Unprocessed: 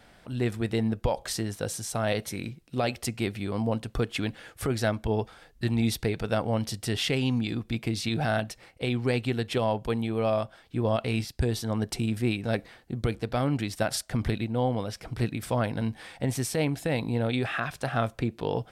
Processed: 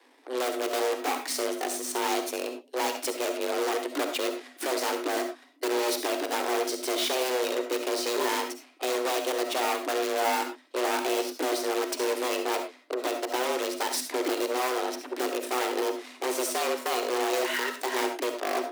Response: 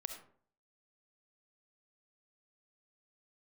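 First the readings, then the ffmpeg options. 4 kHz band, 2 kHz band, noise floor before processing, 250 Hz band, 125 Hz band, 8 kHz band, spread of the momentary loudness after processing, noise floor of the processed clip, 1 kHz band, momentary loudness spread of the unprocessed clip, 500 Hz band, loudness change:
+3.5 dB, +2.5 dB, -57 dBFS, -4.5 dB, under -40 dB, +5.0 dB, 5 LU, -55 dBFS, +5.5 dB, 6 LU, +2.5 dB, +0.5 dB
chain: -filter_complex "[0:a]aeval=exprs='0.0631*(abs(mod(val(0)/0.0631+3,4)-2)-1)':c=same,aeval=exprs='0.0631*(cos(1*acos(clip(val(0)/0.0631,-1,1)))-cos(1*PI/2))+0.00501*(cos(4*acos(clip(val(0)/0.0631,-1,1)))-cos(4*PI/2))+0.0178*(cos(6*acos(clip(val(0)/0.0631,-1,1)))-cos(6*PI/2))+0.00501*(cos(7*acos(clip(val(0)/0.0631,-1,1)))-cos(7*PI/2))+0.0178*(cos(8*acos(clip(val(0)/0.0631,-1,1)))-cos(8*PI/2))':c=same,afreqshift=250[a];[1:a]atrim=start_sample=2205,afade=t=out:st=0.17:d=0.01,atrim=end_sample=7938[b];[a][b]afir=irnorm=-1:irlink=0,volume=4dB"

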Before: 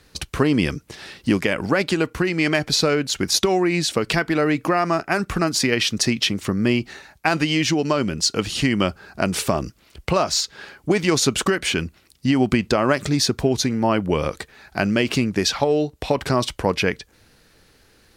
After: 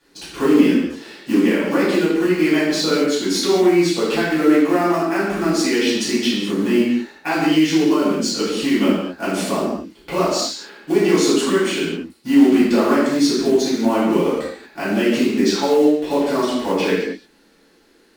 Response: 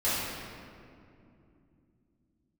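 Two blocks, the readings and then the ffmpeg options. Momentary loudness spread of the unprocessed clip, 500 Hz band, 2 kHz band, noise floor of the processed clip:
7 LU, +4.5 dB, -0.5 dB, -54 dBFS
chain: -filter_complex "[0:a]acrusher=bits=4:mode=log:mix=0:aa=0.000001,lowshelf=f=170:t=q:w=3:g=-13[a];[1:a]atrim=start_sample=2205,afade=t=out:st=0.45:d=0.01,atrim=end_sample=20286,asetrate=70560,aresample=44100[b];[a][b]afir=irnorm=-1:irlink=0,volume=-8dB"

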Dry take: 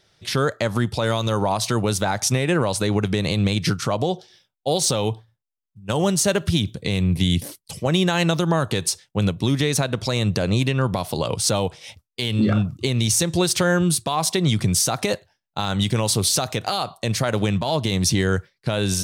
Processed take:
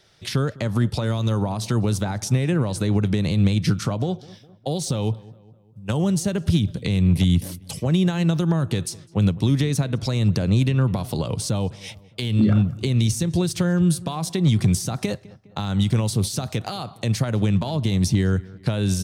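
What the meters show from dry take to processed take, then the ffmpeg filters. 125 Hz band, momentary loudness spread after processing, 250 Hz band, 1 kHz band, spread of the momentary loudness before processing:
+2.5 dB, 9 LU, +1.0 dB, -7.5 dB, 7 LU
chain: -filter_complex "[0:a]acrossover=split=280[a][b];[b]acompressor=threshold=-32dB:ratio=5[c];[a][c]amix=inputs=2:normalize=0,volume=13.5dB,asoftclip=hard,volume=-13.5dB,asplit=2[d][e];[e]adelay=205,lowpass=f=2.4k:p=1,volume=-21dB,asplit=2[f][g];[g]adelay=205,lowpass=f=2.4k:p=1,volume=0.51,asplit=2[h][i];[i]adelay=205,lowpass=f=2.4k:p=1,volume=0.51,asplit=2[j][k];[k]adelay=205,lowpass=f=2.4k:p=1,volume=0.51[l];[f][h][j][l]amix=inputs=4:normalize=0[m];[d][m]amix=inputs=2:normalize=0,volume=3dB"

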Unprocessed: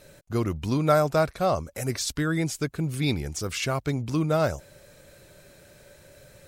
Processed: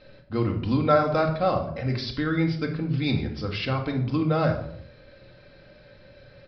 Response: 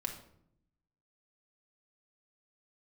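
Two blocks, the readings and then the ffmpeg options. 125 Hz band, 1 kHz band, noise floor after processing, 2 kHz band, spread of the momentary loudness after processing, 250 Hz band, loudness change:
+2.0 dB, +1.5 dB, -52 dBFS, +0.5 dB, 9 LU, +2.0 dB, +1.0 dB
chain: -filter_complex "[0:a]aresample=11025,aresample=44100[a];[1:a]atrim=start_sample=2205,afade=t=out:st=0.44:d=0.01,atrim=end_sample=19845[b];[a][b]afir=irnorm=-1:irlink=0"

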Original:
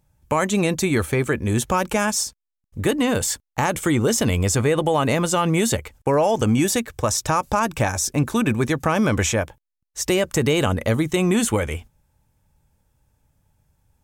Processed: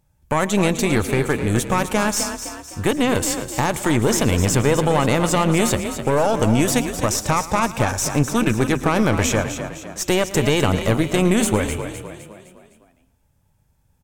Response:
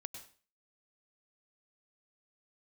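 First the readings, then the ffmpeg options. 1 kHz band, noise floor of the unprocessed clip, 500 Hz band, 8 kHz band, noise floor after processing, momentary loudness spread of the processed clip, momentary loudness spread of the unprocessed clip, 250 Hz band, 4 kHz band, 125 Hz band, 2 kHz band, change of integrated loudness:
+1.5 dB, -82 dBFS, +1.5 dB, +1.0 dB, -62 dBFS, 8 LU, 5 LU, +2.0 dB, +2.0 dB, +2.0 dB, +1.5 dB, +1.5 dB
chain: -filter_complex "[0:a]aeval=exprs='0.473*(cos(1*acos(clip(val(0)/0.473,-1,1)))-cos(1*PI/2))+0.0944*(cos(4*acos(clip(val(0)/0.473,-1,1)))-cos(4*PI/2))+0.0299*(cos(6*acos(clip(val(0)/0.473,-1,1)))-cos(6*PI/2))+0.0106*(cos(8*acos(clip(val(0)/0.473,-1,1)))-cos(8*PI/2))':c=same,asplit=6[a][b][c][d][e][f];[b]adelay=256,afreqshift=35,volume=-9.5dB[g];[c]adelay=512,afreqshift=70,volume=-16.2dB[h];[d]adelay=768,afreqshift=105,volume=-23dB[i];[e]adelay=1024,afreqshift=140,volume=-29.7dB[j];[f]adelay=1280,afreqshift=175,volume=-36.5dB[k];[a][g][h][i][j][k]amix=inputs=6:normalize=0,asplit=2[l][m];[1:a]atrim=start_sample=2205,adelay=112[n];[m][n]afir=irnorm=-1:irlink=0,volume=-12.5dB[o];[l][o]amix=inputs=2:normalize=0"

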